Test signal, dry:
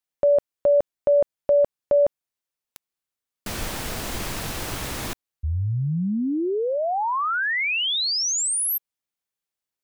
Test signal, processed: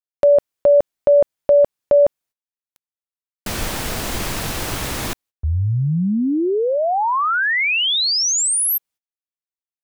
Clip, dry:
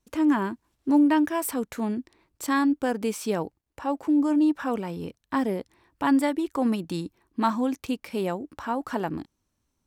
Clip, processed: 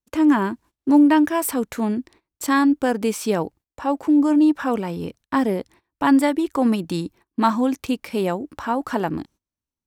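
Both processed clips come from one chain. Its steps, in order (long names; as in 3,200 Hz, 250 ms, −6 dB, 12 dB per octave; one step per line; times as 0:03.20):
noise gate −52 dBFS, range −21 dB
level +5.5 dB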